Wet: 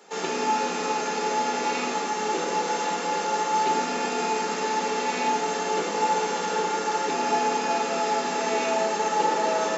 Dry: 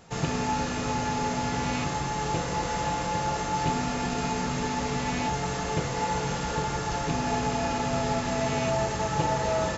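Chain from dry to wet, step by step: steep high-pass 190 Hz 72 dB/octave; hum notches 50/100/150/200/250 Hz; reverberation RT60 1.6 s, pre-delay 5 ms, DRR 2 dB

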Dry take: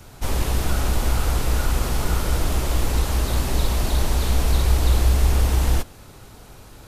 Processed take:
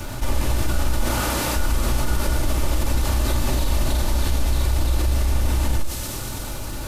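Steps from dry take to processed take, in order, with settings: 1.04–1.55 s: high-pass 130 Hz -> 370 Hz 6 dB/octave; peak limiter -14.5 dBFS, peak gain reduction 8 dB; bit crusher 11-bit; feedback echo behind a high-pass 121 ms, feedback 81%, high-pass 4.1 kHz, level -6.5 dB; reverberation RT60 0.35 s, pre-delay 3 ms, DRR 4 dB; level flattener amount 50%; trim -3 dB

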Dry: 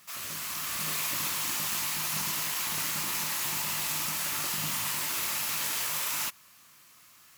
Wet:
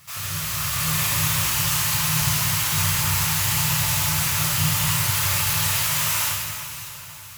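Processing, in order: resonant low shelf 160 Hz +13.5 dB, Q 3; on a send: echo whose repeats swap between lows and highs 295 ms, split 2.1 kHz, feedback 69%, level -11 dB; on the sum: plate-style reverb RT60 1.8 s, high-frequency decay 0.95×, DRR -2 dB; trim +4.5 dB

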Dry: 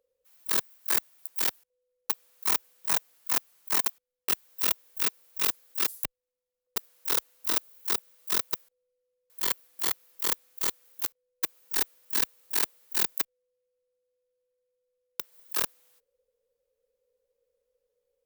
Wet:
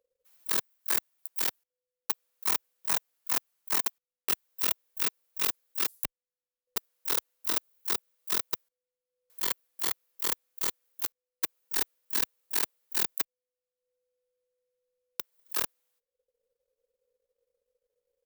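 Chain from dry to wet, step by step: transient shaper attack +2 dB, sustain -11 dB; trim -3 dB

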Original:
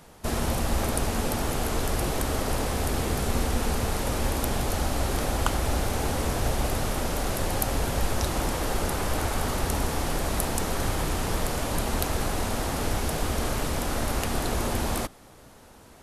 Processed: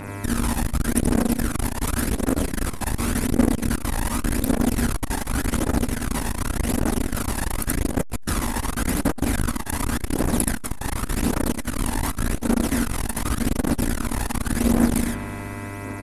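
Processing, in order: fifteen-band graphic EQ 100 Hz -9 dB, 250 Hz +12 dB, 1.6 kHz +5 dB, 10 kHz +8 dB; in parallel at -0.5 dB: compression, threshold -32 dBFS, peak gain reduction 14.5 dB; on the sum: phaser 0.88 Hz, delay 1.2 ms, feedback 67%; mains buzz 100 Hz, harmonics 26, -31 dBFS -4 dB/octave; on a send: early reflections 38 ms -8 dB, 77 ms -3 dB; on the sum: spring tank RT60 3.2 s, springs 59 ms, chirp 50 ms, DRR 11.5 dB; transformer saturation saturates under 330 Hz; trim -4.5 dB

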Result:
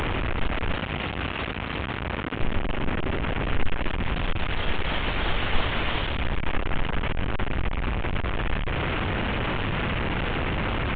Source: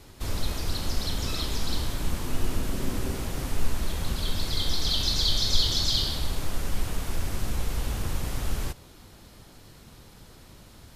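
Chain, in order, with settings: one-bit delta coder 16 kbps, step -19.5 dBFS; 0.76–2.40 s: high-pass 66 Hz

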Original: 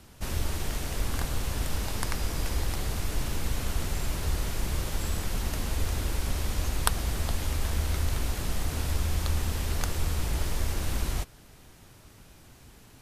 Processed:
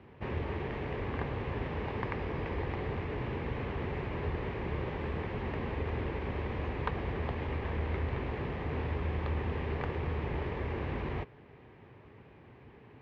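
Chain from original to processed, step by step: saturation -15 dBFS, distortion -24 dB; cabinet simulation 110–2200 Hz, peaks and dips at 190 Hz -5 dB, 290 Hz -3 dB, 420 Hz +5 dB, 660 Hz -5 dB, 1.4 kHz -10 dB; trim +3 dB

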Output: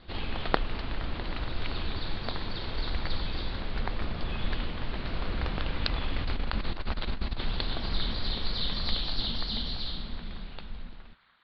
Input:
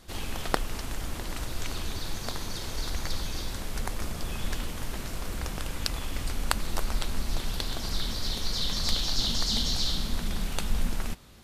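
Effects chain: fade out at the end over 3.35 s; steep low-pass 4.5 kHz 72 dB/octave; 5.05–7.44 s: compressor with a negative ratio -28 dBFS, ratio -0.5; band-passed feedback delay 468 ms, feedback 81%, band-pass 1.5 kHz, level -18 dB; trim +1 dB

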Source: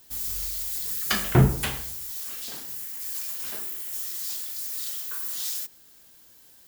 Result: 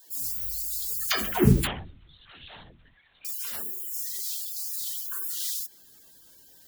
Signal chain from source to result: coarse spectral quantiser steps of 30 dB; 1.67–3.25 s: LPC vocoder at 8 kHz whisper; phase dispersion lows, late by 107 ms, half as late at 340 Hz

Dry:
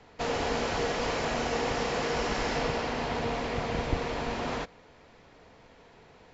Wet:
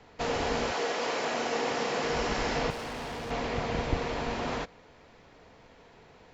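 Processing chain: 0.71–2.03 s: high-pass 360 Hz -> 170 Hz 12 dB/octave; 2.70–3.31 s: overload inside the chain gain 35.5 dB

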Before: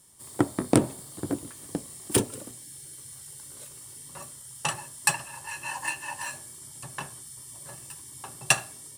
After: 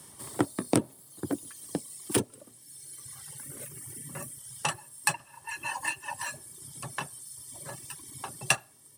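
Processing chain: high-pass 77 Hz; band-stop 7.2 kHz, Q 12; reverb removal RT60 2 s; 3.38–4.39 s: ten-band graphic EQ 125 Hz +5 dB, 250 Hz +4 dB, 1 kHz -8 dB, 2 kHz +5 dB, 4 kHz -9 dB, 16 kHz +7 dB; three bands compressed up and down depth 40%

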